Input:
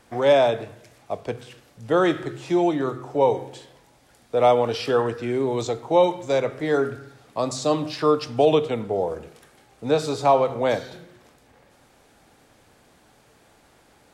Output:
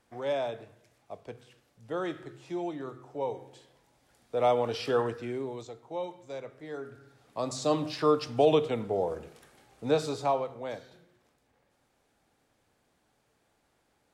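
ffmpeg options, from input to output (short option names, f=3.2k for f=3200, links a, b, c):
-af "volume=7dB,afade=t=in:st=3.37:d=1.63:silence=0.398107,afade=t=out:st=5:d=0.66:silence=0.251189,afade=t=in:st=6.85:d=0.89:silence=0.223872,afade=t=out:st=9.92:d=0.61:silence=0.298538"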